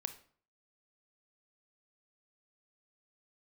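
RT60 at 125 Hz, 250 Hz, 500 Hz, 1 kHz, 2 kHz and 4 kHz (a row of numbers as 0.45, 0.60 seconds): 0.55, 0.55, 0.50, 0.50, 0.40, 0.35 seconds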